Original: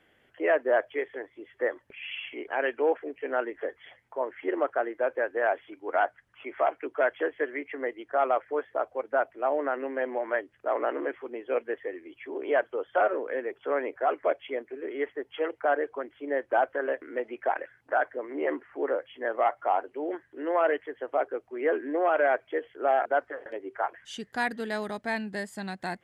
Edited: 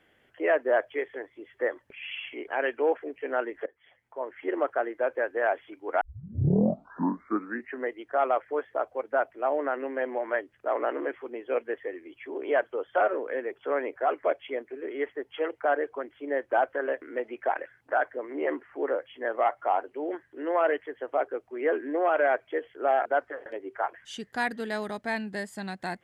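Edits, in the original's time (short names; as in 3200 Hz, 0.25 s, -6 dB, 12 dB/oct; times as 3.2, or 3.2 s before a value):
3.66–4.57 fade in, from -20.5 dB
6.01 tape start 1.88 s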